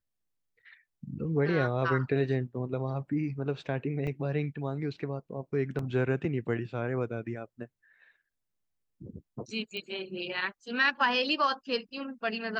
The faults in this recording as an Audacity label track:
4.070000	4.080000	drop-out 5.3 ms
5.790000	5.790000	drop-out 2.4 ms
9.770000	9.770000	click −24 dBFS

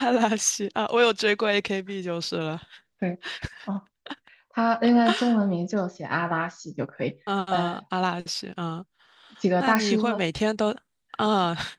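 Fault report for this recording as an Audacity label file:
9.750000	9.750000	click −8 dBFS

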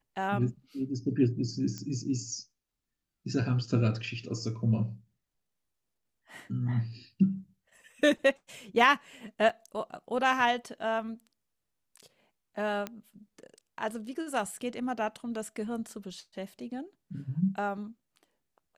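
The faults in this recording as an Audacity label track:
1.780000	1.780000	click −25 dBFS
9.490000	9.500000	drop-out 5.1 ms
12.870000	12.870000	click −20 dBFS

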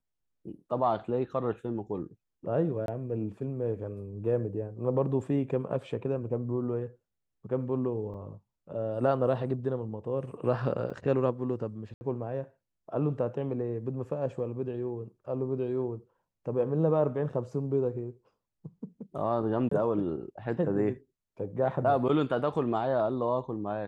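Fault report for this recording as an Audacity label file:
2.860000	2.880000	drop-out 22 ms
8.140000	8.150000	drop-out 5.7 ms
10.900000	10.900000	drop-out 4.3 ms
11.940000	12.010000	drop-out 70 ms
19.690000	19.710000	drop-out 24 ms

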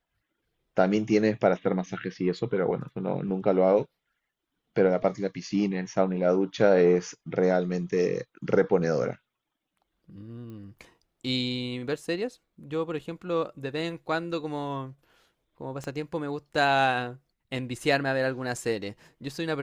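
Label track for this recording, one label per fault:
10.500000	10.500000	click −33 dBFS
15.840000	15.840000	click −23 dBFS

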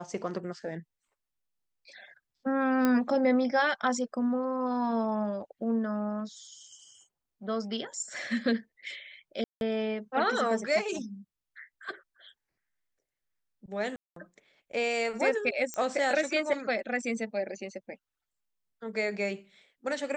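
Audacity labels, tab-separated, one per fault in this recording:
2.850000	2.850000	click −13 dBFS
9.440000	9.610000	drop-out 171 ms
13.960000	14.160000	drop-out 203 ms
15.740000	15.740000	click −19 dBFS

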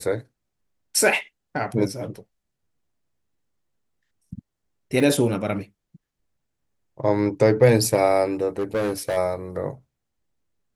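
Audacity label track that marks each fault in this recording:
5.000000	5.000000	drop-out 2.1 ms
8.580000	9.180000	clipping −19.5 dBFS

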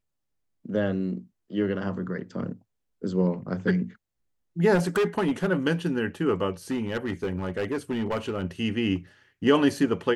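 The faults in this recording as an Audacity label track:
4.740000	5.490000	clipping −19.5 dBFS
6.710000	8.440000	clipping −23 dBFS

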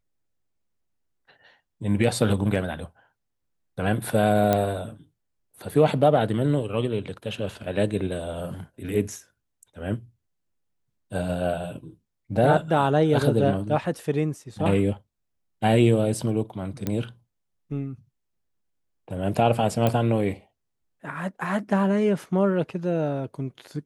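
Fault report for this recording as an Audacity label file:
4.530000	4.530000	click −8 dBFS
16.870000	16.870000	click −13 dBFS
19.870000	19.870000	click −10 dBFS

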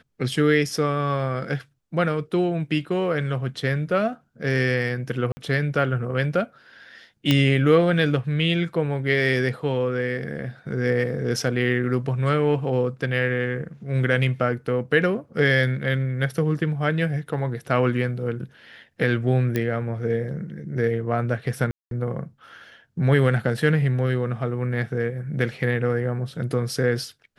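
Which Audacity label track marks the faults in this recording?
5.320000	5.370000	drop-out 50 ms
7.310000	7.310000	click −6 dBFS
19.560000	19.560000	click −11 dBFS
21.710000	21.910000	drop-out 202 ms

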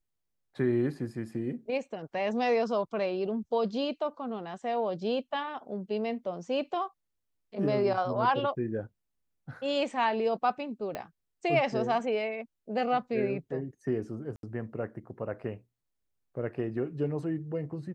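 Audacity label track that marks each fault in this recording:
10.950000	10.950000	click −21 dBFS
14.360000	14.430000	drop-out 72 ms

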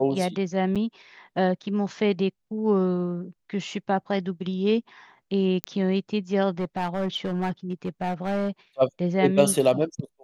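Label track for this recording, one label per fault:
0.750000	0.760000	drop-out 6.9 ms
5.640000	5.640000	click −10 dBFS
6.590000	8.490000	clipping −22 dBFS

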